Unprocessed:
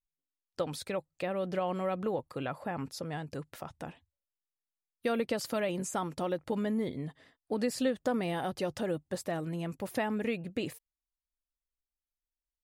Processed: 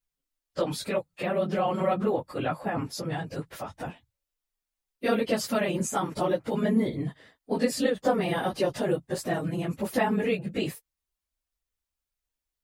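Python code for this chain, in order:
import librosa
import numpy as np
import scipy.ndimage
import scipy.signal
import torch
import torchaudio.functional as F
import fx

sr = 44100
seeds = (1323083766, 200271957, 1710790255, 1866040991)

y = fx.phase_scramble(x, sr, seeds[0], window_ms=50)
y = F.gain(torch.from_numpy(y), 6.0).numpy()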